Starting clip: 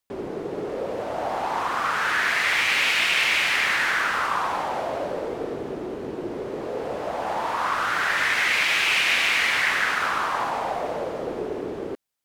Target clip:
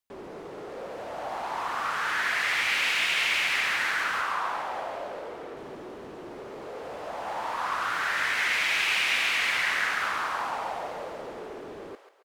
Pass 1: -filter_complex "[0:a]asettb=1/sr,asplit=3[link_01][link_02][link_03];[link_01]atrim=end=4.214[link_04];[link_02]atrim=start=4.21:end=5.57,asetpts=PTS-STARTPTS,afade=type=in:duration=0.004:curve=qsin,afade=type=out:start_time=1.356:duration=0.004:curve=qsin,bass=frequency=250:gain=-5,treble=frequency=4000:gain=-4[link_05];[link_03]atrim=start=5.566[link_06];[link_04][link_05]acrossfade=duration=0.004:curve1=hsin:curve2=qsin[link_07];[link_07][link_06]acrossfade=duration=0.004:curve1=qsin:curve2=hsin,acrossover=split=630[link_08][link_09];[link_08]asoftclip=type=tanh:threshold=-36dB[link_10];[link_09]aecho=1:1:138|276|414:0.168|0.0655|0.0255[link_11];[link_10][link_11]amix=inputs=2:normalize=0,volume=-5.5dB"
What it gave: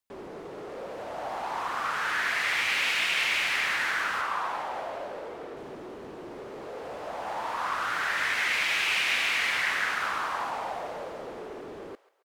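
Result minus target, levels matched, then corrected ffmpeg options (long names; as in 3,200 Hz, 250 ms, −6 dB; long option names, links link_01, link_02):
echo-to-direct −9.5 dB
-filter_complex "[0:a]asettb=1/sr,asplit=3[link_01][link_02][link_03];[link_01]atrim=end=4.214[link_04];[link_02]atrim=start=4.21:end=5.57,asetpts=PTS-STARTPTS,afade=type=in:duration=0.004:curve=qsin,afade=type=out:start_time=1.356:duration=0.004:curve=qsin,bass=frequency=250:gain=-5,treble=frequency=4000:gain=-4[link_05];[link_03]atrim=start=5.566[link_06];[link_04][link_05]acrossfade=duration=0.004:curve1=hsin:curve2=qsin[link_07];[link_07][link_06]acrossfade=duration=0.004:curve1=qsin:curve2=hsin,acrossover=split=630[link_08][link_09];[link_08]asoftclip=type=tanh:threshold=-36dB[link_10];[link_09]aecho=1:1:138|276|414|552|690:0.501|0.195|0.0762|0.0297|0.0116[link_11];[link_10][link_11]amix=inputs=2:normalize=0,volume=-5.5dB"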